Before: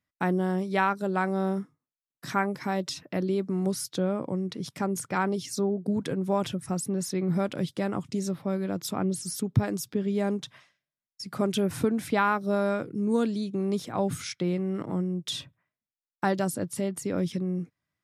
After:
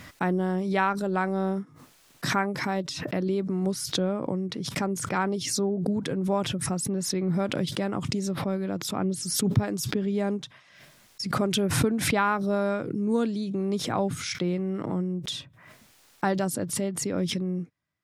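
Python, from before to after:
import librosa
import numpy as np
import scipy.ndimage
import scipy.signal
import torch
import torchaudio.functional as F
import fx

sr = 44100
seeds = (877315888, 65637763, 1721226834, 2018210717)

y = fx.high_shelf(x, sr, hz=11000.0, db=-8.0)
y = fx.pre_swell(y, sr, db_per_s=47.0)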